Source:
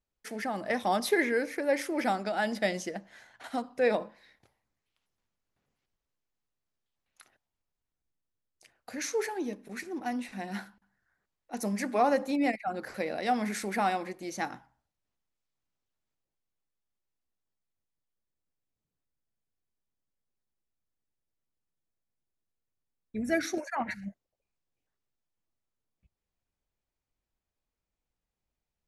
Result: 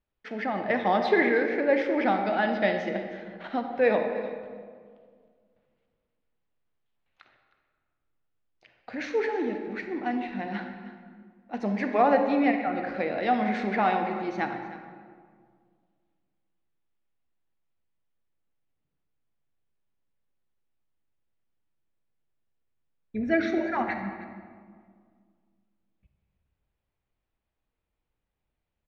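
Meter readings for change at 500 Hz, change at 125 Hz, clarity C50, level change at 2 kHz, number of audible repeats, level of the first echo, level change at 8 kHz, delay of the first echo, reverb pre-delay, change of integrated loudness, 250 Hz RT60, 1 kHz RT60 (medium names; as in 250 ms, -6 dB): +5.0 dB, +4.5 dB, 5.5 dB, +4.5 dB, 1, -16.5 dB, under -15 dB, 313 ms, 30 ms, +4.5 dB, 2.3 s, 1.8 s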